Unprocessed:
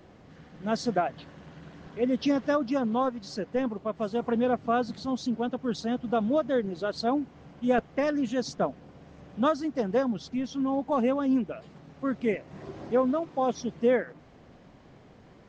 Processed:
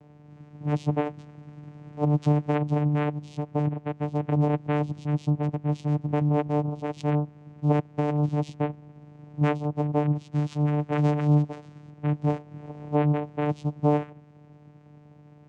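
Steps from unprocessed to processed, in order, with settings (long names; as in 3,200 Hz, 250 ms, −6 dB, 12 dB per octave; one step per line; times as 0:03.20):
0:10.31–0:11.90: flat-topped bell 2,800 Hz +9.5 dB
channel vocoder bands 4, saw 148 Hz
level +3 dB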